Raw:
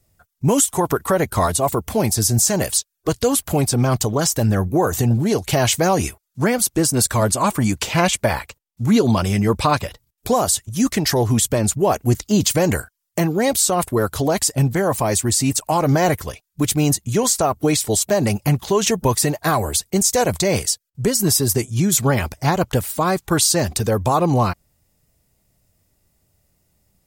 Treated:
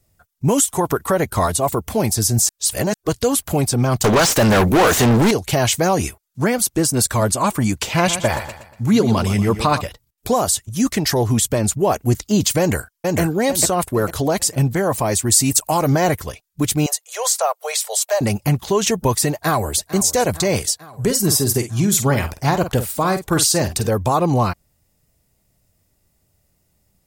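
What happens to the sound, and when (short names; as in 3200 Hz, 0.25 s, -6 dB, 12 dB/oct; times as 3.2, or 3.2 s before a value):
2.49–2.94 reverse
4.04–5.31 overdrive pedal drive 34 dB, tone 4300 Hz, clips at -7 dBFS
7.88–9.81 feedback echo 0.119 s, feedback 42%, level -11.5 dB
12.59–13.2 echo throw 0.45 s, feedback 35%, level -2.5 dB
15.3–15.89 high shelf 6300 Hz +9 dB
16.86–18.21 steep high-pass 490 Hz 72 dB/oct
19.32–19.82 echo throw 0.45 s, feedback 70%, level -16 dB
20.88–23.9 doubler 49 ms -10 dB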